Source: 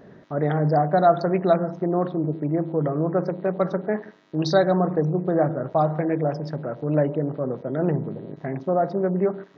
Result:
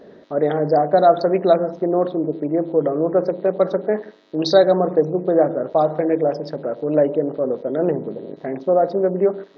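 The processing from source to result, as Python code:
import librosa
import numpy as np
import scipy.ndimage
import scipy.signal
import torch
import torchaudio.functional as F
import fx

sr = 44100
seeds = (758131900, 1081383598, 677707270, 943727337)

y = fx.graphic_eq(x, sr, hz=(125, 250, 500, 4000), db=(-9, 4, 9, 9))
y = y * 10.0 ** (-1.5 / 20.0)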